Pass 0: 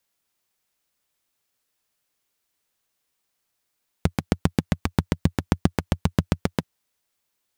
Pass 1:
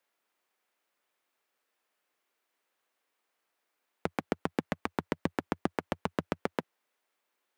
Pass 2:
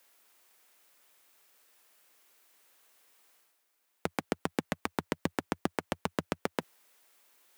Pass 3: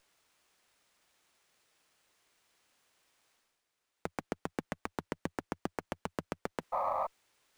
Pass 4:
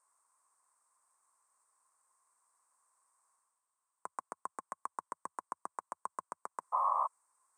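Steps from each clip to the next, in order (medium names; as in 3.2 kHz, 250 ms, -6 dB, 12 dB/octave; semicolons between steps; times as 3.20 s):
three-band isolator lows -23 dB, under 260 Hz, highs -12 dB, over 2.7 kHz; peak limiter -16.5 dBFS, peak gain reduction 8 dB; trim +3 dB
treble shelf 4.3 kHz +11.5 dB; reverse; upward compressor, threshold -53 dBFS; reverse; trim -1 dB
painted sound noise, 6.72–7.07 s, 510–1300 Hz -27 dBFS; sliding maximum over 3 samples; trim -5.5 dB
two resonant band-passes 3 kHz, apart 3 oct; trim +8.5 dB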